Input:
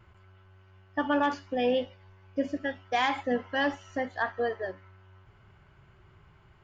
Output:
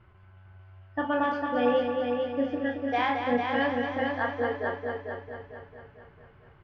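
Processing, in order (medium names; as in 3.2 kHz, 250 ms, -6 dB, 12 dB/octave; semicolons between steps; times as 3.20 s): distance through air 250 m; doubling 33 ms -6 dB; multi-head delay 224 ms, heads first and second, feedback 50%, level -6.5 dB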